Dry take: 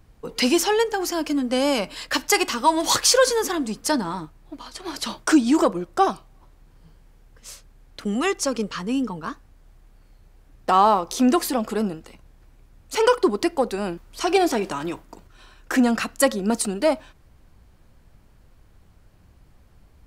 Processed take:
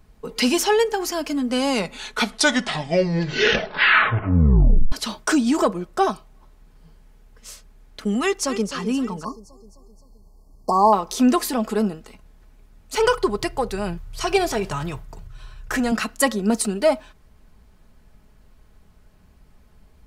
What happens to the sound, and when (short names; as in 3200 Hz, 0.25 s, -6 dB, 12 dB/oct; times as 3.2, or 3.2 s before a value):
1.55 tape stop 3.37 s
8.21–8.72 echo throw 0.26 s, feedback 55%, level -11.5 dB
9.24–10.93 brick-wall FIR band-stop 1200–4200 Hz
12.97–15.92 resonant low shelf 170 Hz +10.5 dB, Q 3
whole clip: comb 4.7 ms, depth 41%